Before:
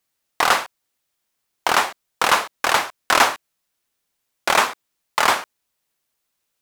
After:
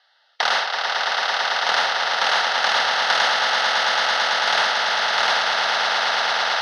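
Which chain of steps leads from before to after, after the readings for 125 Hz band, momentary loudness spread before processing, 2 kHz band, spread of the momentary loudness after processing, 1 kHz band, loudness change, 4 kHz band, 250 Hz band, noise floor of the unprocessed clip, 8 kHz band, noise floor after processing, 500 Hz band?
no reading, 11 LU, +4.0 dB, 3 LU, +1.0 dB, +1.0 dB, +7.5 dB, -8.0 dB, -76 dBFS, -3.5 dB, -61 dBFS, +1.0 dB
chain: octave divider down 1 oct, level -2 dB; low-pass 4.5 kHz 24 dB/octave; peak limiter -11 dBFS, peak gain reduction 9 dB; resonant high-pass 920 Hz, resonance Q 1.9; static phaser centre 1.6 kHz, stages 8; echo with a slow build-up 111 ms, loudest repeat 8, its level -7 dB; spectrum-flattening compressor 2:1; trim +2 dB

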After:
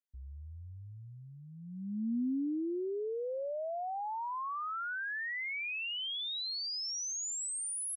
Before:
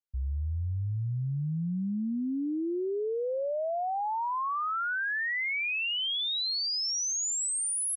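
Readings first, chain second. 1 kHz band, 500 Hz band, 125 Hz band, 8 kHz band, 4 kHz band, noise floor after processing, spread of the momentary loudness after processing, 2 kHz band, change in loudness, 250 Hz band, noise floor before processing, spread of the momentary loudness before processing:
-6.5 dB, -5.5 dB, -16.0 dB, -7.0 dB, -7.0 dB, -50 dBFS, 15 LU, -7.0 dB, -6.0 dB, -4.0 dB, -31 dBFS, 5 LU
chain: resonant low shelf 190 Hz -7 dB, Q 3; trim -7 dB

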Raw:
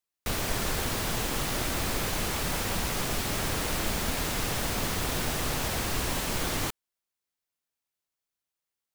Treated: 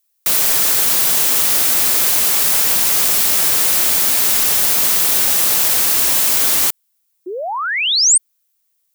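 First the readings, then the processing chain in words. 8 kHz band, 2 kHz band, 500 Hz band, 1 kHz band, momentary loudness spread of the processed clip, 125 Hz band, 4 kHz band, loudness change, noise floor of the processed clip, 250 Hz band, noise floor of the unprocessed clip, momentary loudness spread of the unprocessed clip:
+19.5 dB, +11.0 dB, +5.5 dB, +8.0 dB, 4 LU, -5.5 dB, +15.0 dB, +18.0 dB, -66 dBFS, 0.0 dB, under -85 dBFS, 0 LU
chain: painted sound rise, 7.26–8.18 s, 340–9100 Hz -28 dBFS; RIAA curve recording; trim +6.5 dB

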